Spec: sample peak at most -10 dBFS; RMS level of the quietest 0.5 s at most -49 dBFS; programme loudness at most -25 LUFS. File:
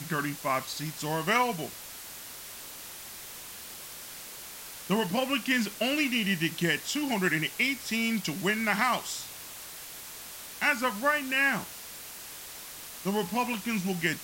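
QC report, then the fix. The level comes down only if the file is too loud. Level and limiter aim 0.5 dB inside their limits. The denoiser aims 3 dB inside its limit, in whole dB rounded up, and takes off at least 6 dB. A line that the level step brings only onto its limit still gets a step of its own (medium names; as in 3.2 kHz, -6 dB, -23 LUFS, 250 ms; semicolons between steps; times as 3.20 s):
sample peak -12.5 dBFS: pass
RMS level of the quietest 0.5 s -44 dBFS: fail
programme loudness -28.5 LUFS: pass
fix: noise reduction 8 dB, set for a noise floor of -44 dBFS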